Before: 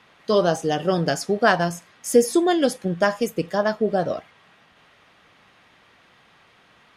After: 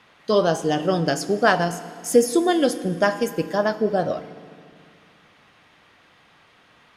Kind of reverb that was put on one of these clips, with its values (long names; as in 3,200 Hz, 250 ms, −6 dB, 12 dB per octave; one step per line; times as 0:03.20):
feedback delay network reverb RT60 2.1 s, low-frequency decay 1.35×, high-frequency decay 0.9×, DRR 12.5 dB